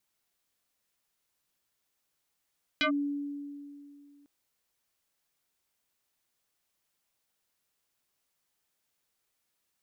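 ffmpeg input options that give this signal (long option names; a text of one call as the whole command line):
ffmpeg -f lavfi -i "aevalsrc='0.0708*pow(10,-3*t/2.53)*sin(2*PI*286*t+4.4*clip(1-t/0.1,0,1)*sin(2*PI*3.16*286*t))':duration=1.45:sample_rate=44100" out.wav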